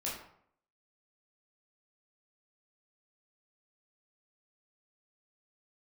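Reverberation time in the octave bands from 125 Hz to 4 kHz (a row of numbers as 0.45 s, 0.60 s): 0.65 s, 0.65 s, 0.65 s, 0.65 s, 0.55 s, 0.40 s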